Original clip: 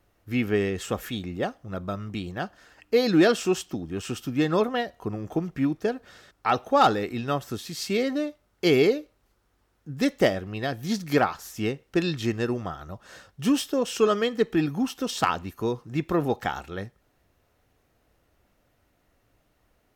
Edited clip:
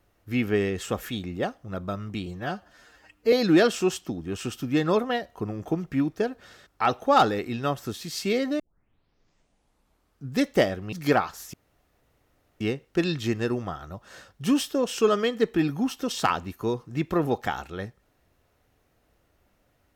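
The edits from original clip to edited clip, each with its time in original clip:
0:02.26–0:02.97: time-stretch 1.5×
0:08.24: tape start 1.78 s
0:10.57–0:10.98: remove
0:11.59: splice in room tone 1.07 s

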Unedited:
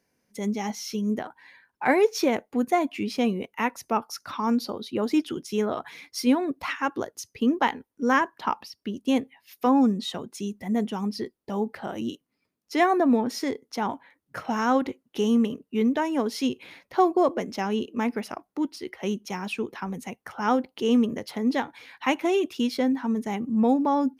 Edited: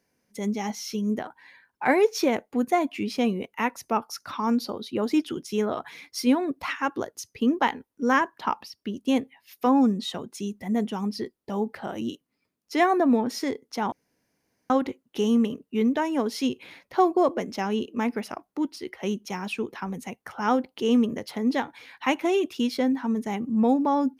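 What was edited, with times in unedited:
0:13.92–0:14.70: fill with room tone

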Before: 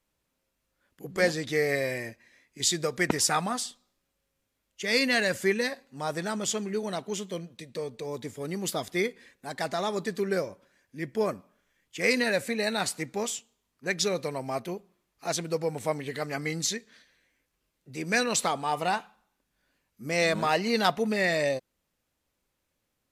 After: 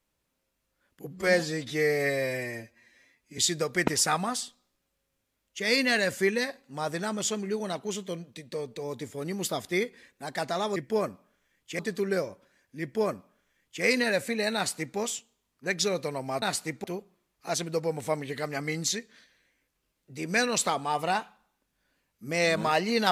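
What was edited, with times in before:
0:01.07–0:02.61: time-stretch 1.5×
0:11.01–0:12.04: duplicate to 0:09.99
0:12.75–0:13.17: duplicate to 0:14.62

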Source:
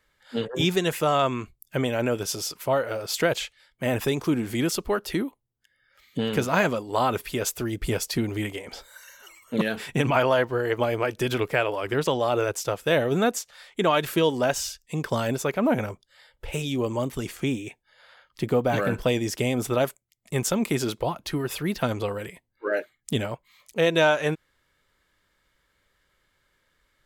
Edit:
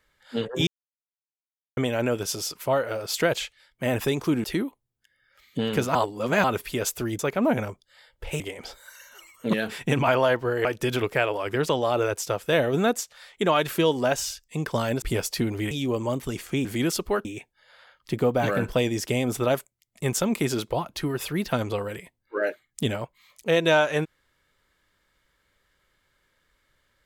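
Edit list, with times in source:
0:00.67–0:01.77: silence
0:04.44–0:05.04: move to 0:17.55
0:06.55–0:07.04: reverse
0:07.79–0:08.48: swap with 0:15.40–0:16.61
0:10.73–0:11.03: remove

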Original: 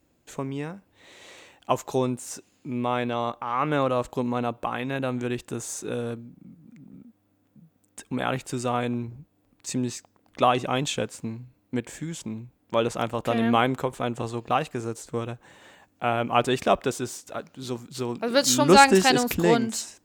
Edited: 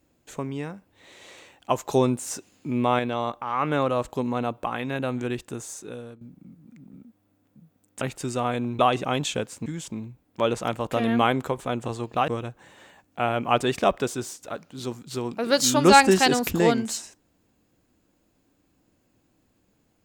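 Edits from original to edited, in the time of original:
0:01.88–0:02.99: clip gain +4 dB
0:05.30–0:06.21: fade out, to −14.5 dB
0:08.01–0:08.30: remove
0:09.08–0:10.41: remove
0:11.28–0:12.00: remove
0:14.62–0:15.12: remove

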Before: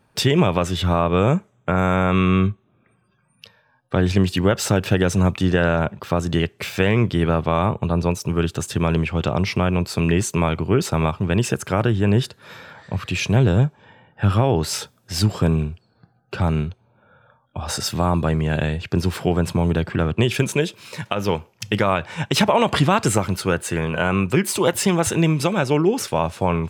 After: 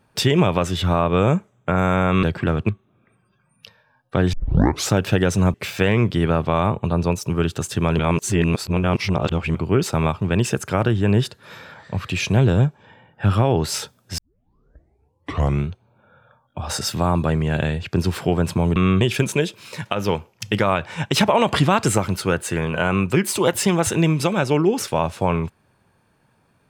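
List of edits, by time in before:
0:02.23–0:02.48: swap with 0:19.75–0:20.21
0:04.12: tape start 0.58 s
0:05.33–0:06.53: remove
0:08.98–0:10.54: reverse
0:15.17: tape start 1.51 s

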